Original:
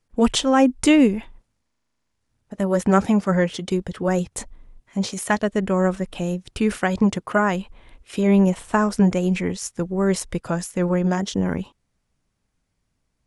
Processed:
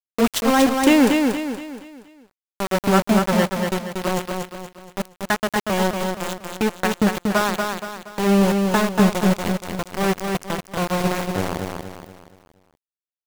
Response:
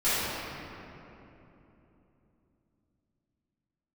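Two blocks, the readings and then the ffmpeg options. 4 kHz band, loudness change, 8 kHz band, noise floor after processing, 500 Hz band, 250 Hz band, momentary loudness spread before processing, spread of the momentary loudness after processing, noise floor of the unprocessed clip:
+3.0 dB, +0.5 dB, +1.0 dB, under -85 dBFS, +0.5 dB, -0.5 dB, 11 LU, 14 LU, -74 dBFS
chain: -filter_complex "[0:a]asplit=2[s0][s1];[1:a]atrim=start_sample=2205,lowpass=f=5100:w=0.5412,lowpass=f=5100:w=1.3066,adelay=18[s2];[s1][s2]afir=irnorm=-1:irlink=0,volume=0.0141[s3];[s0][s3]amix=inputs=2:normalize=0,aeval=exprs='val(0)*gte(abs(val(0)),0.141)':c=same,aecho=1:1:236|472|708|944|1180:0.596|0.25|0.105|0.0441|0.0185"

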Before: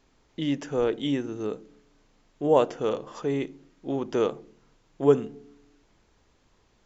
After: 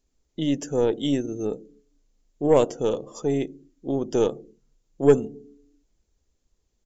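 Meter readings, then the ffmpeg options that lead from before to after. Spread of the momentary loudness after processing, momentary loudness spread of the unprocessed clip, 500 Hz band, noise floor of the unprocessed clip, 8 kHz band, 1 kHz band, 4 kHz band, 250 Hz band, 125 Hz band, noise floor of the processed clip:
17 LU, 17 LU, +3.0 dB, -65 dBFS, no reading, -1.0 dB, +2.0 dB, +3.5 dB, +4.0 dB, -73 dBFS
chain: -af "firequalizer=gain_entry='entry(480,0);entry(940,-8);entry(6900,9)':delay=0.05:min_phase=1,afftdn=nr=16:nf=-48,aeval=exprs='0.447*(cos(1*acos(clip(val(0)/0.447,-1,1)))-cos(1*PI/2))+0.0251*(cos(6*acos(clip(val(0)/0.447,-1,1)))-cos(6*PI/2))':c=same,volume=1.41"

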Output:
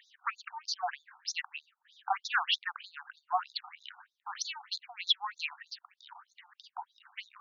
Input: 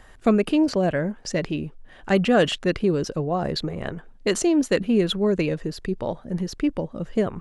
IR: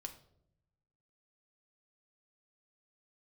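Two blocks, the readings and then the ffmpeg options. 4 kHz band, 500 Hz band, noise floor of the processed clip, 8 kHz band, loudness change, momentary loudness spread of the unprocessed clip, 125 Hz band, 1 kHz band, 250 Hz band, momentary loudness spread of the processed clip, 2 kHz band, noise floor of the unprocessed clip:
-2.0 dB, -29.0 dB, -84 dBFS, -9.5 dB, -11.0 dB, 10 LU, under -40 dB, -4.0 dB, under -40 dB, 19 LU, -5.5 dB, -48 dBFS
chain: -af "aeval=exprs='clip(val(0),-1,0.224)':c=same,aeval=exprs='0.473*(cos(1*acos(clip(val(0)/0.473,-1,1)))-cos(1*PI/2))+0.0211*(cos(4*acos(clip(val(0)/0.473,-1,1)))-cos(4*PI/2))':c=same,afftfilt=real='re*between(b*sr/1024,980*pow(5000/980,0.5+0.5*sin(2*PI*3.2*pts/sr))/1.41,980*pow(5000/980,0.5+0.5*sin(2*PI*3.2*pts/sr))*1.41)':imag='im*between(b*sr/1024,980*pow(5000/980,0.5+0.5*sin(2*PI*3.2*pts/sr))/1.41,980*pow(5000/980,0.5+0.5*sin(2*PI*3.2*pts/sr))*1.41)':win_size=1024:overlap=0.75,volume=1.19"

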